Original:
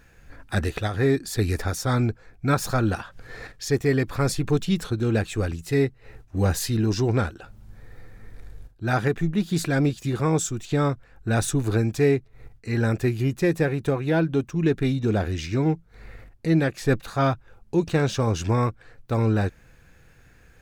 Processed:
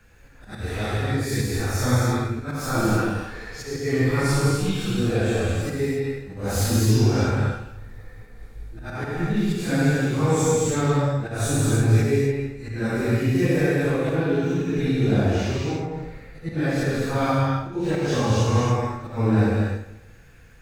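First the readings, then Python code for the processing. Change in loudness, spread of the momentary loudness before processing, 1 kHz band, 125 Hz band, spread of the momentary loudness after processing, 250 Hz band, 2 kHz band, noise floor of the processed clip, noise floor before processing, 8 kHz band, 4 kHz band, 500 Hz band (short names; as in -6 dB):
+1.5 dB, 6 LU, +1.5 dB, +2.0 dB, 12 LU, +1.5 dB, +1.5 dB, -46 dBFS, -54 dBFS, +2.5 dB, +2.0 dB, +1.0 dB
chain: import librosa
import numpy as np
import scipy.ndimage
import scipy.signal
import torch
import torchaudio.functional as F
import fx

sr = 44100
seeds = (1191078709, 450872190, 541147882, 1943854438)

p1 = fx.phase_scramble(x, sr, seeds[0], window_ms=200)
p2 = p1 + fx.echo_feedback(p1, sr, ms=162, feedback_pct=35, wet_db=-16.0, dry=0)
p3 = fx.auto_swell(p2, sr, attack_ms=173.0)
p4 = fx.rev_gated(p3, sr, seeds[1], gate_ms=320, shape='flat', drr_db=-3.0)
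y = F.gain(torch.from_numpy(p4), -1.5).numpy()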